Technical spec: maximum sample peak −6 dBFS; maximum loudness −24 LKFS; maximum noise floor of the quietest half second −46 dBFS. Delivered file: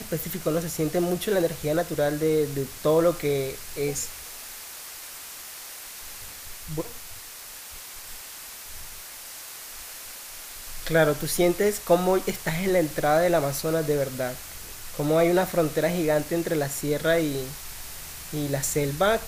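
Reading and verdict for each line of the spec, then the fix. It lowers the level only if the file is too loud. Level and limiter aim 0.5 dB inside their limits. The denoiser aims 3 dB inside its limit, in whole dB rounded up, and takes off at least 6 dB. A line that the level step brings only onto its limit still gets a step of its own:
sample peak −8.0 dBFS: in spec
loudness −25.0 LKFS: in spec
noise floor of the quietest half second −41 dBFS: out of spec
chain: broadband denoise 8 dB, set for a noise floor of −41 dBFS

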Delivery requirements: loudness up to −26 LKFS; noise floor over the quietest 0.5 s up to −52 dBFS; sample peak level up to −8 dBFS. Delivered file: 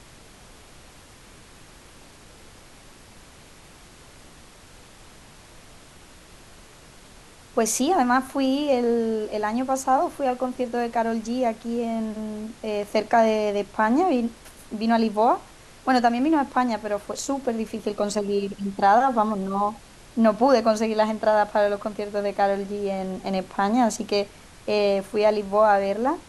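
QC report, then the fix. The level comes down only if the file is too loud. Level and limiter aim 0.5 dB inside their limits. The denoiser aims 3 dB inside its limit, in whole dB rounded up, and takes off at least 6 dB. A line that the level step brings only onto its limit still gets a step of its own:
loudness −23.5 LKFS: out of spec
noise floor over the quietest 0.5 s −48 dBFS: out of spec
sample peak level −6.0 dBFS: out of spec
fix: broadband denoise 6 dB, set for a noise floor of −48 dBFS
level −3 dB

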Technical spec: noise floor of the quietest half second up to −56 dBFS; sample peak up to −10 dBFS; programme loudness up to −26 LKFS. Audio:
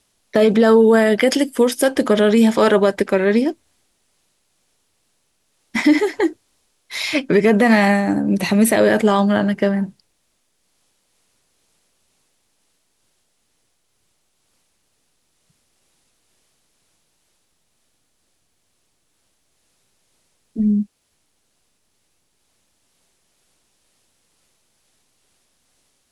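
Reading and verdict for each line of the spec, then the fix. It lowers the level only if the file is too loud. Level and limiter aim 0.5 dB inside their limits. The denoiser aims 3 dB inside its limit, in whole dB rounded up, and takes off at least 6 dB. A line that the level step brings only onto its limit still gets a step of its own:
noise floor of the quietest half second −67 dBFS: in spec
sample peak −5.0 dBFS: out of spec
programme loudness −16.5 LKFS: out of spec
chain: level −10 dB

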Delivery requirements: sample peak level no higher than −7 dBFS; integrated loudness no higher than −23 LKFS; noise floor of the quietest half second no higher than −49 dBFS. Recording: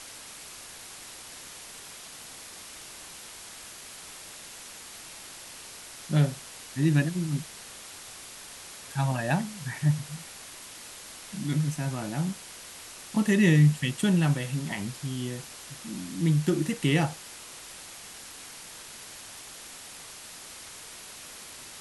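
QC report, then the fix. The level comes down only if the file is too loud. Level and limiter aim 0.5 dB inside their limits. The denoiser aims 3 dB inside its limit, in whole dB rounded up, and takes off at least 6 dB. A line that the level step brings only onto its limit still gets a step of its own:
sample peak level −10.0 dBFS: in spec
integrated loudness −27.5 LKFS: in spec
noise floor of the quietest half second −45 dBFS: out of spec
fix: broadband denoise 7 dB, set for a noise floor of −45 dBFS

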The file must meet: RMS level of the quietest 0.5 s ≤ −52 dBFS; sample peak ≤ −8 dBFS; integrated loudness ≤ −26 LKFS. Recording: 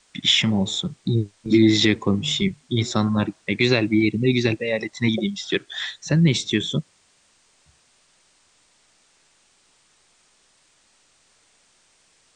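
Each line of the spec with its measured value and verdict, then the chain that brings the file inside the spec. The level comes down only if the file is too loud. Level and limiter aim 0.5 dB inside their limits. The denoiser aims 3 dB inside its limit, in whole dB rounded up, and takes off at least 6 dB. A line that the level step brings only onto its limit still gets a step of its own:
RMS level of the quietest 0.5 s −61 dBFS: in spec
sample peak −4.5 dBFS: out of spec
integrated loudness −21.0 LKFS: out of spec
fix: level −5.5 dB

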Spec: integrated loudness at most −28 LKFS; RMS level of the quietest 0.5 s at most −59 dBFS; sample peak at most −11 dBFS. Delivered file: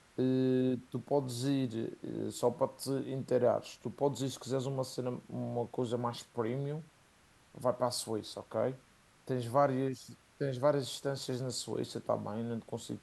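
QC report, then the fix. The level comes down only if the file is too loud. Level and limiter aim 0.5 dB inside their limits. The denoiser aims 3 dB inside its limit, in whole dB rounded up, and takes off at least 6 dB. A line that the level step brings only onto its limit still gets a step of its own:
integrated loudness −35.0 LKFS: in spec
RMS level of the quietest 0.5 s −65 dBFS: in spec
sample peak −15.0 dBFS: in spec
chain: no processing needed

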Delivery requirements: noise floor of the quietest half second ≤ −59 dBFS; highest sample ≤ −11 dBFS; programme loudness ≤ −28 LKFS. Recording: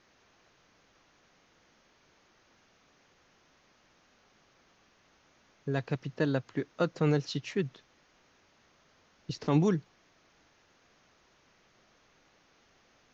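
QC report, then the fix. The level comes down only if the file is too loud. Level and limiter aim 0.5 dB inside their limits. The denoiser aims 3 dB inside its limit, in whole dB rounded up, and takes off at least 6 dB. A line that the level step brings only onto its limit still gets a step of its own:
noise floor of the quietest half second −66 dBFS: in spec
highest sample −14.0 dBFS: in spec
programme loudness −31.5 LKFS: in spec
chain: no processing needed

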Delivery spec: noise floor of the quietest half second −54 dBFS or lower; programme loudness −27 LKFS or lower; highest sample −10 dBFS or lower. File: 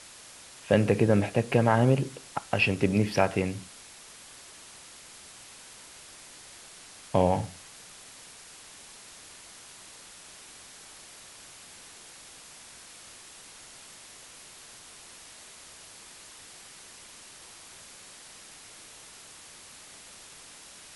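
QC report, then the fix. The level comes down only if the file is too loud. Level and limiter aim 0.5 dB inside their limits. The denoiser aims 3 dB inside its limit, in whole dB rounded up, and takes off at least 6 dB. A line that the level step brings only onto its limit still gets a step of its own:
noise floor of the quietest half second −49 dBFS: out of spec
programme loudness −26.0 LKFS: out of spec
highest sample −7.0 dBFS: out of spec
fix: broadband denoise 7 dB, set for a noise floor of −49 dBFS
level −1.5 dB
brickwall limiter −10.5 dBFS

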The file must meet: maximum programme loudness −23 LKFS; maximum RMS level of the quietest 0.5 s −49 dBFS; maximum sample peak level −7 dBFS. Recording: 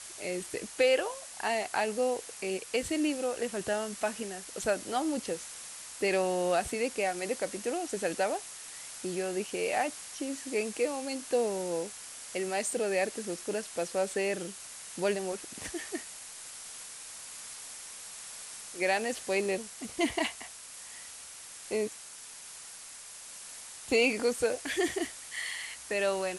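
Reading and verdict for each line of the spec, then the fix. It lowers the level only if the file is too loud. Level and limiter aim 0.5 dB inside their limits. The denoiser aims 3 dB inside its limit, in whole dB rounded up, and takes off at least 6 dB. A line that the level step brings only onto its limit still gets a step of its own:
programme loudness −33.0 LKFS: in spec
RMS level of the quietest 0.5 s −47 dBFS: out of spec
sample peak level −13.5 dBFS: in spec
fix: broadband denoise 6 dB, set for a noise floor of −47 dBFS

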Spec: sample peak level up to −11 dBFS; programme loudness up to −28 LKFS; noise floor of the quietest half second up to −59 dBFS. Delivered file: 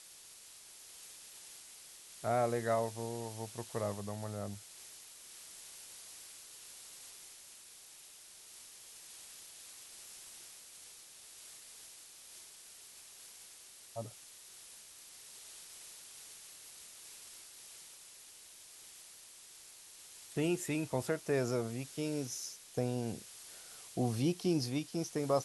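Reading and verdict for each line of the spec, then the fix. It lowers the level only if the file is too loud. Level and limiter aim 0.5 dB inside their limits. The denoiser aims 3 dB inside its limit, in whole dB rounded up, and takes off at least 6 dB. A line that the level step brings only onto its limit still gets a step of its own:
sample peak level −19.0 dBFS: in spec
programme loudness −40.5 LKFS: in spec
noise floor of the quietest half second −56 dBFS: out of spec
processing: broadband denoise 6 dB, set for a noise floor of −56 dBFS

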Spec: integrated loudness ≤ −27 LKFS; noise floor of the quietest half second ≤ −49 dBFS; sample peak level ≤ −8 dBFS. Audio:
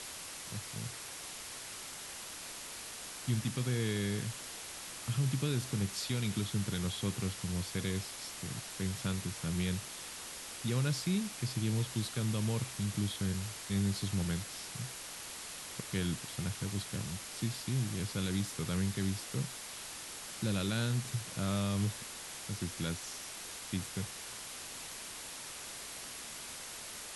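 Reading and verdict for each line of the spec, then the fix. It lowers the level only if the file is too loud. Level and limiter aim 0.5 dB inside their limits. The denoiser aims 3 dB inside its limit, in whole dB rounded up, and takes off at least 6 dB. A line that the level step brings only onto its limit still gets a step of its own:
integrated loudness −37.0 LKFS: in spec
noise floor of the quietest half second −46 dBFS: out of spec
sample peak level −21.0 dBFS: in spec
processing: broadband denoise 6 dB, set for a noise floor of −46 dBFS

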